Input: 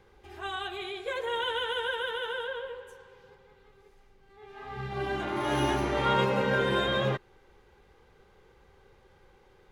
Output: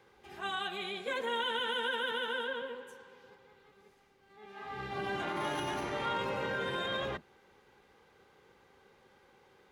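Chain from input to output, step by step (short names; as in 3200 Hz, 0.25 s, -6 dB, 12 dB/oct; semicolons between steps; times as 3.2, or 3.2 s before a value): octaver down 1 oct, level +2 dB; limiter -23.5 dBFS, peak gain reduction 9.5 dB; HPF 480 Hz 6 dB/oct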